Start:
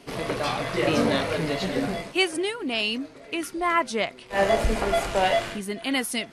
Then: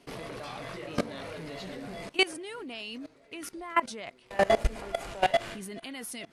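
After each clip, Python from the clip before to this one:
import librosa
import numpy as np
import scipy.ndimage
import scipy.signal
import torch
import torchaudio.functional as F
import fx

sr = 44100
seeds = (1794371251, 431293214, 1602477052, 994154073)

y = fx.level_steps(x, sr, step_db=20)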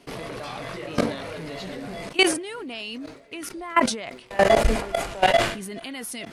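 y = fx.sustainer(x, sr, db_per_s=98.0)
y = y * 10.0 ** (5.5 / 20.0)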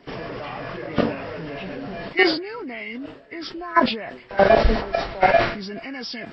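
y = fx.freq_compress(x, sr, knee_hz=1200.0, ratio=1.5)
y = y * 10.0 ** (2.5 / 20.0)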